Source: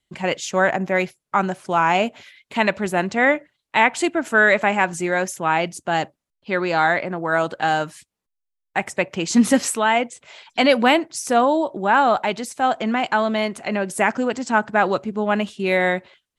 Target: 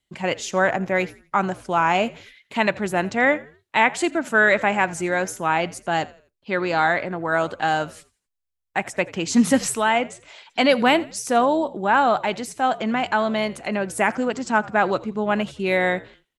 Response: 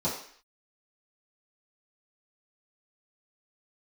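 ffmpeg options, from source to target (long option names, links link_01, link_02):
-filter_complex "[0:a]asplit=4[link_01][link_02][link_03][link_04];[link_02]adelay=84,afreqshift=-68,volume=-20.5dB[link_05];[link_03]adelay=168,afreqshift=-136,volume=-29.6dB[link_06];[link_04]adelay=252,afreqshift=-204,volume=-38.7dB[link_07];[link_01][link_05][link_06][link_07]amix=inputs=4:normalize=0,volume=-1.5dB"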